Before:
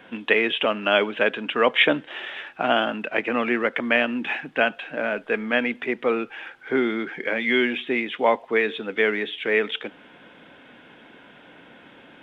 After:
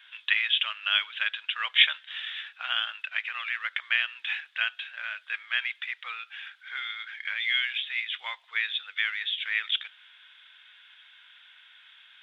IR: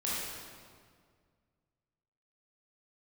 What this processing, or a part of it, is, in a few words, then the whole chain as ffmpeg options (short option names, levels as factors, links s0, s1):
headphones lying on a table: -af "highpass=f=1400:w=0.5412,highpass=f=1400:w=1.3066,equalizer=f=3600:t=o:w=0.44:g=11,volume=0.596"